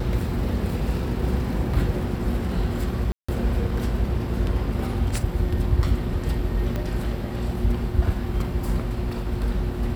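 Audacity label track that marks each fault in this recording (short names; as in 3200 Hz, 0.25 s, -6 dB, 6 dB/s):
3.120000	3.290000	gap 0.165 s
6.760000	6.760000	pop -15 dBFS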